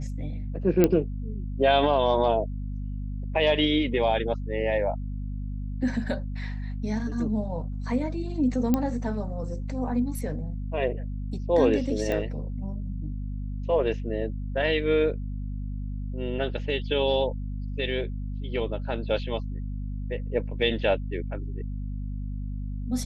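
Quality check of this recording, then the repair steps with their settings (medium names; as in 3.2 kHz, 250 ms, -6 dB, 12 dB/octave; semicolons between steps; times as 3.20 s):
hum 50 Hz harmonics 5 -32 dBFS
0.84 s: pop -7 dBFS
8.74 s: pop -11 dBFS
12.12 s: pop -17 dBFS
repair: de-click; de-hum 50 Hz, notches 5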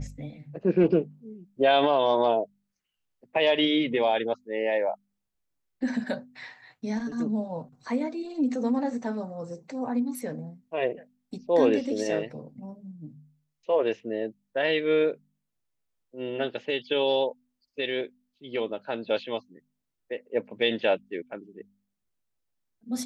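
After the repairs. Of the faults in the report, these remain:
8.74 s: pop
12.12 s: pop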